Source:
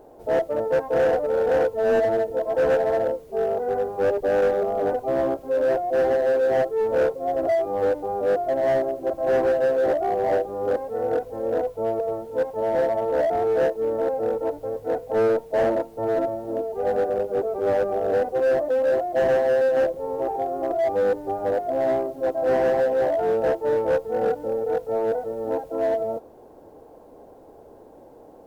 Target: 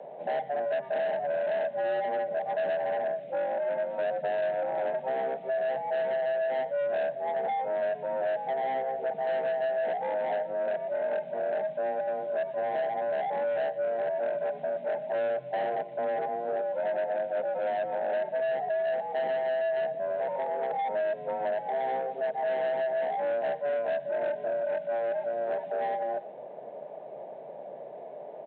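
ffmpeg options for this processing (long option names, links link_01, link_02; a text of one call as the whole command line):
ffmpeg -i in.wav -filter_complex "[0:a]equalizer=frequency=500:width_type=o:width=1:gain=10,equalizer=frequency=1000:width_type=o:width=1:gain=-12,equalizer=frequency=2000:width_type=o:width=1:gain=10,acrossover=split=91|1400[link_01][link_02][link_03];[link_01]acompressor=threshold=-48dB:ratio=4[link_04];[link_02]acompressor=threshold=-27dB:ratio=4[link_05];[link_03]acompressor=threshold=-45dB:ratio=4[link_06];[link_04][link_05][link_06]amix=inputs=3:normalize=0,asplit=2[link_07][link_08];[link_08]adelay=120,highpass=300,lowpass=3400,asoftclip=type=hard:threshold=-25dB,volume=-18dB[link_09];[link_07][link_09]amix=inputs=2:normalize=0,aresample=8000,asoftclip=type=tanh:threshold=-24.5dB,aresample=44100,afreqshift=130" out.wav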